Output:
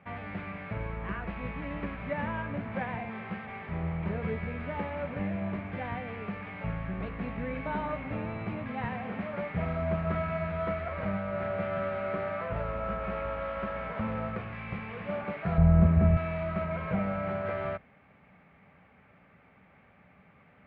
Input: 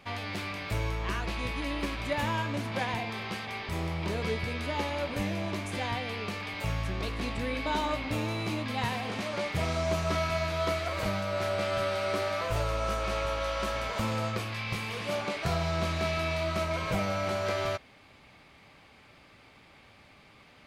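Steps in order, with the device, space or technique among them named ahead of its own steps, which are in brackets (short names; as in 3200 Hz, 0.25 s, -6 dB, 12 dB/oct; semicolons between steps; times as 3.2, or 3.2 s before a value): sub-octave bass pedal (octaver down 1 oct, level -6 dB; speaker cabinet 64–2100 Hz, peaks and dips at 110 Hz -4 dB, 180 Hz +8 dB, 330 Hz -8 dB, 1000 Hz -4 dB); 15.58–16.17 tilt -4 dB/oct; gain -1.5 dB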